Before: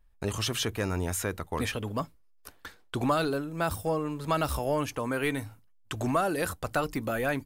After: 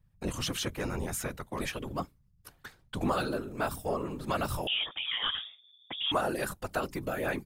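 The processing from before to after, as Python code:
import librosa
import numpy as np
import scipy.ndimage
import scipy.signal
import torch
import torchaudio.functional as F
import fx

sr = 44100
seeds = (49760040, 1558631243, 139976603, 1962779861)

y = fx.freq_invert(x, sr, carrier_hz=3500, at=(4.67, 6.12))
y = fx.whisperise(y, sr, seeds[0])
y = y * 10.0 ** (-3.5 / 20.0)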